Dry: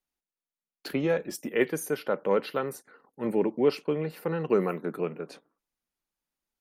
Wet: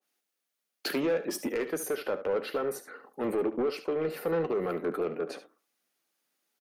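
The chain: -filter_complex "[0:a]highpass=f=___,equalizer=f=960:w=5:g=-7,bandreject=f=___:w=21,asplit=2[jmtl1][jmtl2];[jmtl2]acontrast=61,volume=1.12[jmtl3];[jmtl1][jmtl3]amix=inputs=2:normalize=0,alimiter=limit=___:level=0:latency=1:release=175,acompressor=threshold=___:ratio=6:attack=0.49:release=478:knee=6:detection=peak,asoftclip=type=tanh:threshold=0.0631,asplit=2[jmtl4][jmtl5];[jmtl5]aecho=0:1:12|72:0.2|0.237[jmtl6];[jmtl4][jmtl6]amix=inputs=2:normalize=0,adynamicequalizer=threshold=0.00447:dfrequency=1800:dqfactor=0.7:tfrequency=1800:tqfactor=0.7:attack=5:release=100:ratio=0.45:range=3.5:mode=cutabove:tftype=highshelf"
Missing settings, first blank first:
300, 7500, 0.316, 0.112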